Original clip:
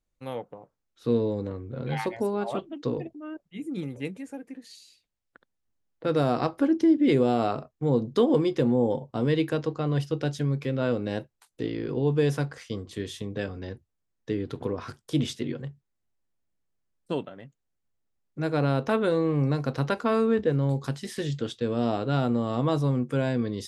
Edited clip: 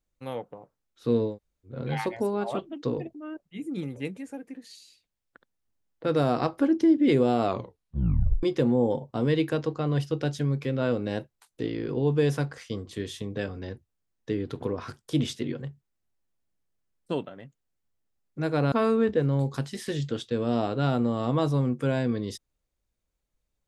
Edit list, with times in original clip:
1.31–1.71 s: room tone, crossfade 0.16 s
7.44 s: tape stop 0.99 s
18.72–20.02 s: delete

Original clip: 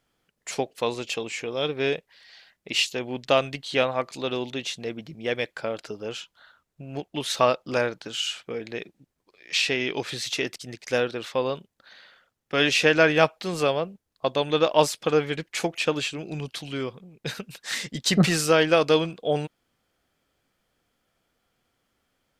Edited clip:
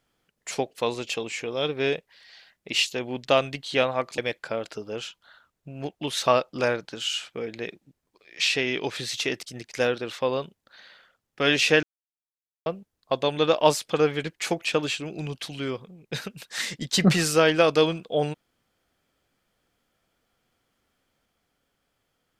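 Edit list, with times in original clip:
4.18–5.31 s: delete
12.96–13.79 s: mute

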